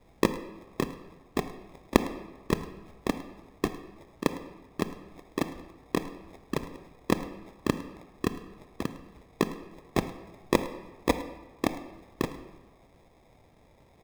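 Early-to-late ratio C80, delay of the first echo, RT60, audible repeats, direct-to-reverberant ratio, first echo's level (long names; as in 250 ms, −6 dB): 12.5 dB, 106 ms, 1.3 s, 1, 9.5 dB, −18.5 dB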